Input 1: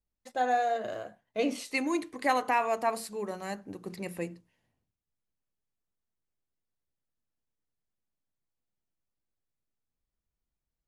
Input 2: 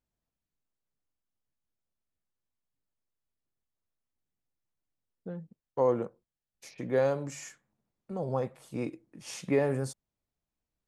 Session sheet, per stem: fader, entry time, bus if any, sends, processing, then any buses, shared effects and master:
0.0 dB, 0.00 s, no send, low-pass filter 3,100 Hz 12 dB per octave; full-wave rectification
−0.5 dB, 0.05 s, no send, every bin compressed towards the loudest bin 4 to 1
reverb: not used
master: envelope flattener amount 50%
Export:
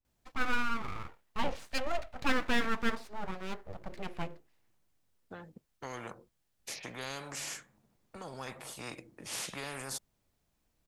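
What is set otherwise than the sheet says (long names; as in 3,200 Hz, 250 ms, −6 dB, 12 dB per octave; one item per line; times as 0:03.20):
stem 2 −0.5 dB → −10.0 dB
master: missing envelope flattener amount 50%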